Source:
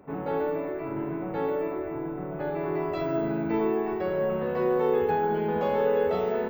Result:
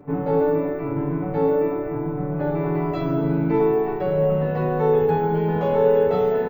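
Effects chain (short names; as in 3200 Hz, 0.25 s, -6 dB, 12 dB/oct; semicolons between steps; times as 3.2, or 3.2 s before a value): low shelf 340 Hz +10 dB; comb 6.9 ms, depth 59%; reverb RT60 0.35 s, pre-delay 7 ms, DRR 12.5 dB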